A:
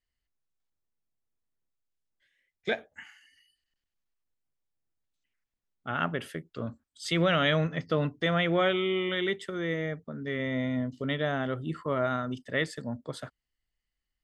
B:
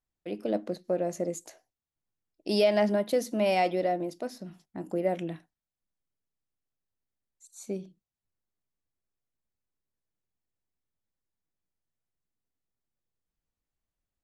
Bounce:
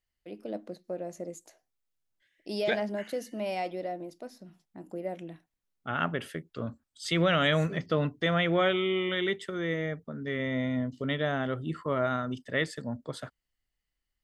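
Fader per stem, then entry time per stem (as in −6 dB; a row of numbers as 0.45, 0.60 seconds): 0.0, −7.5 decibels; 0.00, 0.00 seconds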